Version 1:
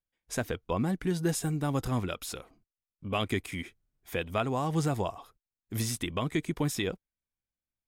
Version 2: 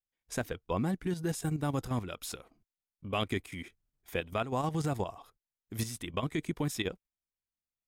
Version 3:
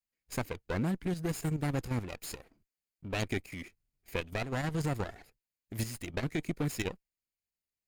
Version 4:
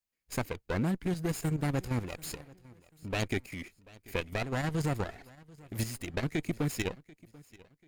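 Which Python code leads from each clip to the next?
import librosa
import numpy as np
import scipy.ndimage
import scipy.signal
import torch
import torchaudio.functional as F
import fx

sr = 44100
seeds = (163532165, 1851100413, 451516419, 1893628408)

y1 = fx.level_steps(x, sr, step_db=10)
y2 = fx.lower_of_two(y1, sr, delay_ms=0.42)
y3 = fx.echo_feedback(y2, sr, ms=738, feedback_pct=33, wet_db=-22.5)
y3 = y3 * 10.0 ** (1.5 / 20.0)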